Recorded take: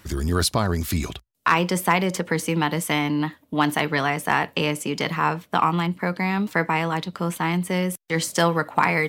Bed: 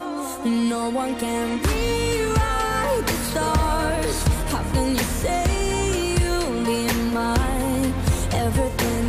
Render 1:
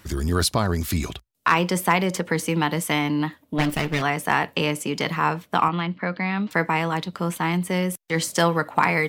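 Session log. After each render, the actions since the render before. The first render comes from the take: 3.58–4.02 minimum comb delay 0.39 ms; 5.68–6.51 speaker cabinet 110–4200 Hz, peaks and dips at 160 Hz -3 dB, 390 Hz -6 dB, 890 Hz -5 dB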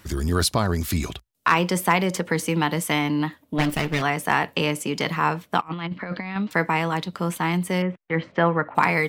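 5.61–6.36 negative-ratio compressor -29 dBFS, ratio -0.5; 7.82–8.75 LPF 2400 Hz 24 dB/oct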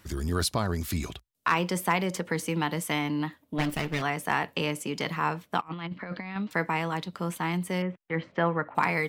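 gain -6 dB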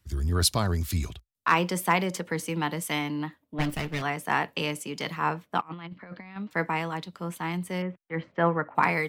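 three-band expander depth 70%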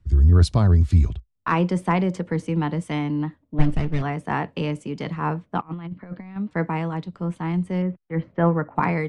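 steep low-pass 10000 Hz 48 dB/oct; tilt -3.5 dB/oct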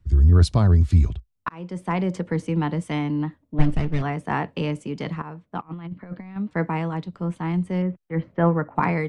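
1.49–2.17 fade in; 5.22–5.96 fade in linear, from -16.5 dB

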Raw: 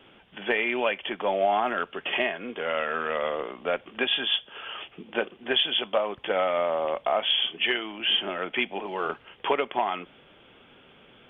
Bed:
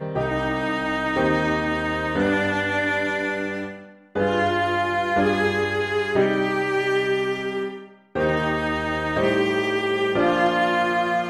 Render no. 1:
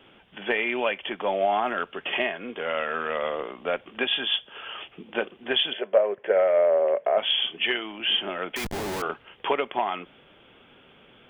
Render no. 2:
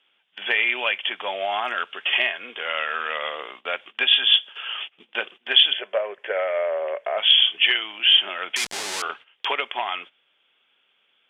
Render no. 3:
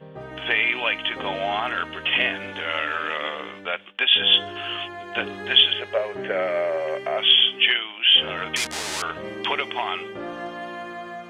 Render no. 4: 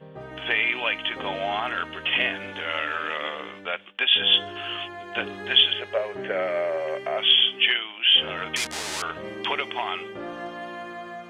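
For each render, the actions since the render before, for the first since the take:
5.73–7.18 speaker cabinet 240–2100 Hz, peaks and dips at 280 Hz -10 dB, 410 Hz +9 dB, 590 Hz +8 dB, 840 Hz -6 dB, 1200 Hz -8 dB, 1700 Hz +4 dB; 8.56–9.02 Schmitt trigger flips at -39.5 dBFS
gate -41 dBFS, range -16 dB; weighting filter ITU-R 468
add bed -13.5 dB
gain -2 dB

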